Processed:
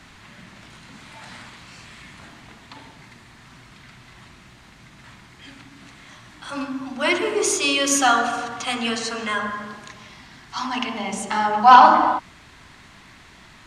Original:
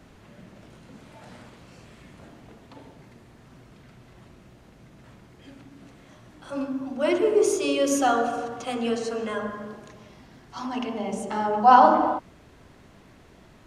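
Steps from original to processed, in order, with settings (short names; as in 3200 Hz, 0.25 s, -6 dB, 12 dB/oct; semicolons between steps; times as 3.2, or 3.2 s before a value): ten-band EQ 500 Hz -8 dB, 1000 Hz +6 dB, 2000 Hz +8 dB, 4000 Hz +8 dB, 8000 Hz +7 dB; sine folder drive 3 dB, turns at 3.5 dBFS; gain -5 dB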